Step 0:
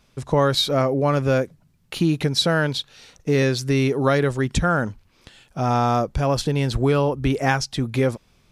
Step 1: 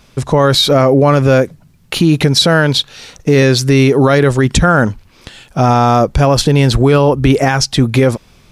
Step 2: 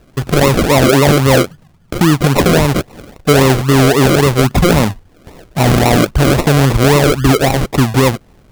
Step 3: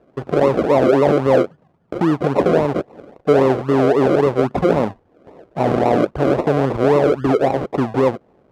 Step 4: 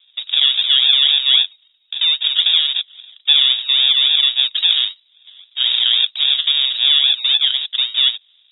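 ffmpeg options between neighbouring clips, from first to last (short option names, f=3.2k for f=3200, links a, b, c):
-af "alimiter=level_in=14dB:limit=-1dB:release=50:level=0:latency=1,volume=-1dB"
-af "acrusher=samples=39:mix=1:aa=0.000001:lfo=1:lforange=23.4:lforate=3.7"
-af "bandpass=f=520:t=q:w=1:csg=0,volume=-1dB"
-af "lowpass=f=3.3k:t=q:w=0.5098,lowpass=f=3.3k:t=q:w=0.6013,lowpass=f=3.3k:t=q:w=0.9,lowpass=f=3.3k:t=q:w=2.563,afreqshift=-3900"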